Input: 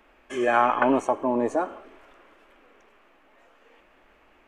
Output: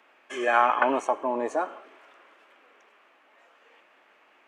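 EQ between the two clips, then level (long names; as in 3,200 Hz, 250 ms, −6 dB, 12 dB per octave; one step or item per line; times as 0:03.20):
meter weighting curve A
0.0 dB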